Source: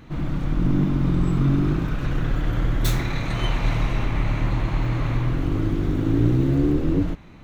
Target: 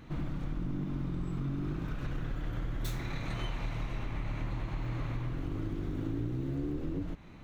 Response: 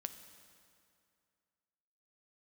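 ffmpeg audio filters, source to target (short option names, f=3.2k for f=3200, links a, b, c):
-af "acompressor=threshold=-26dB:ratio=6,volume=-5.5dB"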